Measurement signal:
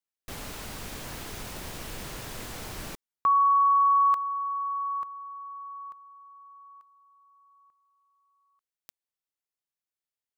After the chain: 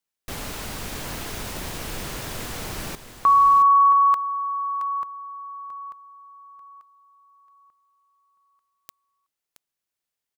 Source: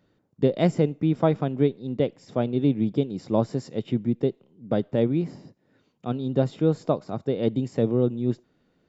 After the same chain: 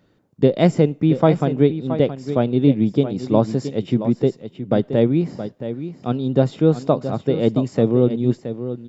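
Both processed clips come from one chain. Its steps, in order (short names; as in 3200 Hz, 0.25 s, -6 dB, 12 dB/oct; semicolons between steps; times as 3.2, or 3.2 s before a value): echo 0.672 s -11 dB; gain +6 dB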